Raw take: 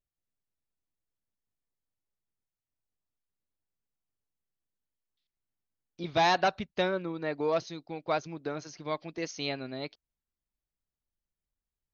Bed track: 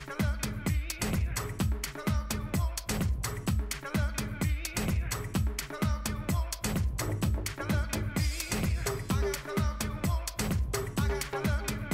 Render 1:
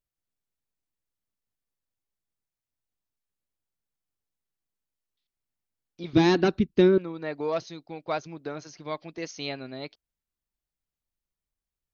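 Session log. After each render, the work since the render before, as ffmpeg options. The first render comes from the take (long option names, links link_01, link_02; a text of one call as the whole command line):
ffmpeg -i in.wav -filter_complex "[0:a]asettb=1/sr,asplit=3[link_01][link_02][link_03];[link_01]atrim=end=6.134[link_04];[link_02]atrim=start=6.13:end=6.98,asetpts=PTS-STARTPTS,afade=type=in:duration=0.004:curve=qsin,afade=type=out:start_time=0.846:duration=0.004:curve=qsin,lowshelf=frequency=470:width_type=q:width=3:gain=11[link_05];[link_03]atrim=start=6.976[link_06];[link_04][link_05]acrossfade=duration=0.004:curve1=hsin:curve2=qsin[link_07];[link_07][link_06]acrossfade=duration=0.004:curve1=qsin:curve2=hsin" out.wav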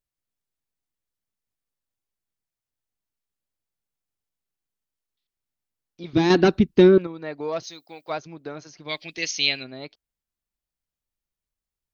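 ffmpeg -i in.wav -filter_complex "[0:a]asettb=1/sr,asplit=3[link_01][link_02][link_03];[link_01]atrim=end=6.304[link_04];[link_02]atrim=start=6.3:end=7.07,asetpts=PTS-STARTPTS,afade=type=in:duration=0.004:curve=qsin,afade=type=out:start_time=0.766:duration=0.004:curve=qsin,acontrast=56[link_05];[link_03]atrim=start=7.066[link_06];[link_04][link_05]acrossfade=duration=0.004:curve1=hsin:curve2=qsin[link_07];[link_07][link_06]acrossfade=duration=0.004:curve1=qsin:curve2=hsin,asplit=3[link_08][link_09][link_10];[link_08]afade=type=out:start_time=7.62:duration=0.02[link_11];[link_09]aemphasis=mode=production:type=riaa,afade=type=in:start_time=7.62:duration=0.02,afade=type=out:start_time=8.09:duration=0.02[link_12];[link_10]afade=type=in:start_time=8.09:duration=0.02[link_13];[link_11][link_12][link_13]amix=inputs=3:normalize=0,asplit=3[link_14][link_15][link_16];[link_14]afade=type=out:start_time=8.88:duration=0.02[link_17];[link_15]highshelf=frequency=1700:width_type=q:width=1.5:gain=13,afade=type=in:start_time=8.88:duration=0.02,afade=type=out:start_time=9.63:duration=0.02[link_18];[link_16]afade=type=in:start_time=9.63:duration=0.02[link_19];[link_17][link_18][link_19]amix=inputs=3:normalize=0" out.wav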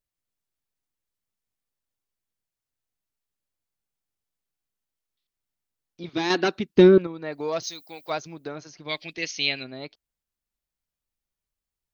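ffmpeg -i in.wav -filter_complex "[0:a]asettb=1/sr,asplit=3[link_01][link_02][link_03];[link_01]atrim=end=6.094[link_04];[link_02]atrim=start=6.09:end=6.76,asetpts=PTS-STARTPTS,afade=type=in:duration=0.004:curve=qsin,afade=type=out:start_time=0.666:duration=0.004:curve=qsin,highpass=frequency=770:poles=1[link_05];[link_03]atrim=start=6.756[link_06];[link_04][link_05]acrossfade=duration=0.004:curve1=hsin:curve2=qsin[link_07];[link_07][link_06]acrossfade=duration=0.004:curve1=qsin:curve2=hsin,asettb=1/sr,asplit=3[link_08][link_09][link_10];[link_08]atrim=end=7.324[link_11];[link_09]atrim=start=7.32:end=8.48,asetpts=PTS-STARTPTS,afade=type=in:duration=0.004:curve=qsin,afade=type=out:start_time=1.156:duration=0.004:curve=qsin,aemphasis=mode=production:type=50kf[link_12];[link_10]atrim=start=8.476[link_13];[link_11][link_12]acrossfade=duration=0.004:curve1=hsin:curve2=qsin[link_14];[link_14][link_13]acrossfade=duration=0.004:curve1=qsin:curve2=hsin,asettb=1/sr,asplit=3[link_15][link_16][link_17];[link_15]atrim=end=9.134[link_18];[link_16]atrim=start=9.13:end=9.57,asetpts=PTS-STARTPTS,afade=type=in:duration=0.004:curve=qsin,afade=type=out:start_time=0.436:duration=0.004:curve=qsin,lowpass=frequency=3100:poles=1[link_19];[link_17]atrim=start=9.566[link_20];[link_18][link_19]acrossfade=duration=0.004:curve1=hsin:curve2=qsin[link_21];[link_21][link_20]acrossfade=duration=0.004:curve1=qsin:curve2=hsin" out.wav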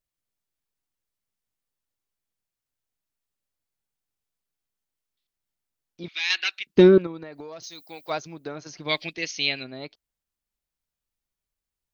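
ffmpeg -i in.wav -filter_complex "[0:a]asettb=1/sr,asplit=3[link_01][link_02][link_03];[link_01]atrim=end=6.084[link_04];[link_02]atrim=start=6.08:end=6.67,asetpts=PTS-STARTPTS,afade=type=in:duration=0.004:curve=qsin,afade=type=out:start_time=0.586:duration=0.004:curve=qsin,highpass=frequency=2400:width_type=q:width=2.8[link_05];[link_03]atrim=start=6.666[link_06];[link_04][link_05]acrossfade=duration=0.004:curve1=hsin:curve2=qsin[link_07];[link_07][link_06]acrossfade=duration=0.004:curve1=qsin:curve2=hsin,asettb=1/sr,asplit=3[link_08][link_09][link_10];[link_08]atrim=end=7.234[link_11];[link_09]atrim=start=7.23:end=7.81,asetpts=PTS-STARTPTS,afade=type=in:duration=0.004:curve=qsin,afade=type=out:start_time=0.576:duration=0.004:curve=qsin,acompressor=threshold=-35dB:ratio=16:attack=3.2:release=140:knee=1:detection=peak[link_12];[link_10]atrim=start=7.806[link_13];[link_11][link_12]acrossfade=duration=0.004:curve1=hsin:curve2=qsin[link_14];[link_14][link_13]acrossfade=duration=0.004:curve1=qsin:curve2=hsin,asplit=3[link_15][link_16][link_17];[link_15]atrim=end=8.662[link_18];[link_16]atrim=start=8.658:end=9.092,asetpts=PTS-STARTPTS,volume=5dB[link_19];[link_17]atrim=start=9.088[link_20];[link_18][link_19]acrossfade=duration=0.004:curve1=hsin:curve2=hsin[link_21];[link_21][link_20]acrossfade=duration=0.004:curve1=hsin:curve2=hsin" out.wav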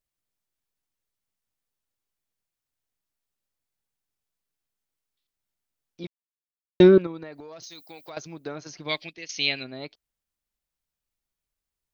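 ffmpeg -i in.wav -filter_complex "[0:a]asettb=1/sr,asplit=3[link_01][link_02][link_03];[link_01]atrim=end=7.374[link_04];[link_02]atrim=start=7.37:end=8.17,asetpts=PTS-STARTPTS,afade=type=in:duration=0.004:curve=qsin,afade=type=out:start_time=0.796:duration=0.004:curve=qsin,acompressor=threshold=-38dB:ratio=6:attack=3.2:release=140:knee=1:detection=peak[link_05];[link_03]atrim=start=8.166[link_06];[link_04][link_05]acrossfade=duration=0.004:curve1=hsin:curve2=qsin[link_07];[link_07][link_06]acrossfade=duration=0.004:curve1=qsin:curve2=hsin,asplit=4[link_08][link_09][link_10][link_11];[link_08]atrim=end=6.07,asetpts=PTS-STARTPTS,afade=type=out:start_time=6.066:duration=0.004:curve=hsin[link_12];[link_09]atrim=start=6.07:end=6.8,asetpts=PTS-STARTPTS,volume=0[link_13];[link_10]atrim=start=6.8:end=9.29,asetpts=PTS-STARTPTS,afade=type=in:duration=0.004:curve=hsin,afade=type=out:start_time=1.9:duration=0.59:silence=0.211349[link_14];[link_11]atrim=start=9.29,asetpts=PTS-STARTPTS,afade=type=in:duration=0.004:curve=hsin:silence=0.211349[link_15];[link_12][link_13][link_14][link_15]concat=n=4:v=0:a=1" out.wav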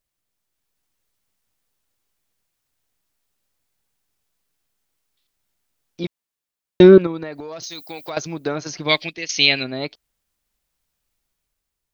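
ffmpeg -i in.wav -af "dynaudnorm=framelen=190:gausssize=7:maxgain=5dB,alimiter=level_in=6dB:limit=-1dB:release=50:level=0:latency=1" out.wav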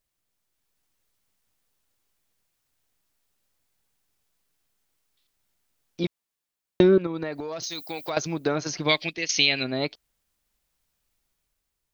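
ffmpeg -i in.wav -af "acompressor=threshold=-19dB:ratio=2.5" out.wav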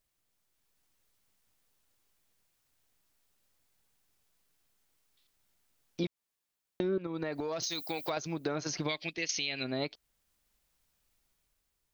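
ffmpeg -i in.wav -af "alimiter=limit=-17dB:level=0:latency=1:release=492,acompressor=threshold=-33dB:ratio=2" out.wav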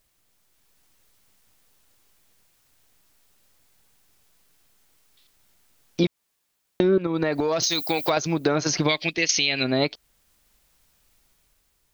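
ffmpeg -i in.wav -af "volume=12dB" out.wav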